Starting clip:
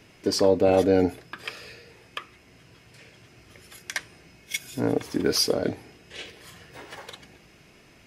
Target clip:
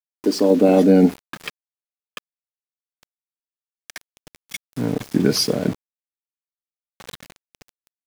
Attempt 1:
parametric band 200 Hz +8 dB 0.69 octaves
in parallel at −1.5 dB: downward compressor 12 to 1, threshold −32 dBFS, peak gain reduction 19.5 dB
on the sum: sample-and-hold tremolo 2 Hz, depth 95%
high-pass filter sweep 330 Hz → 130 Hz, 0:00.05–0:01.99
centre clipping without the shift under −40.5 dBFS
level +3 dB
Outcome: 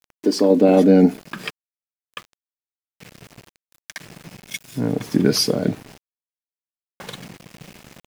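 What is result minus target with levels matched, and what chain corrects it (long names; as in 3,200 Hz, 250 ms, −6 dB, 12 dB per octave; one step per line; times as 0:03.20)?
downward compressor: peak gain reduction −6 dB; centre clipping without the shift: distortion −5 dB
parametric band 200 Hz +8 dB 0.69 octaves
in parallel at −1.5 dB: downward compressor 12 to 1, threshold −38.5 dBFS, peak gain reduction 25.5 dB
on the sum: sample-and-hold tremolo 2 Hz, depth 95%
high-pass filter sweep 330 Hz → 130 Hz, 0:00.05–0:01.99
centre clipping without the shift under −34 dBFS
level +3 dB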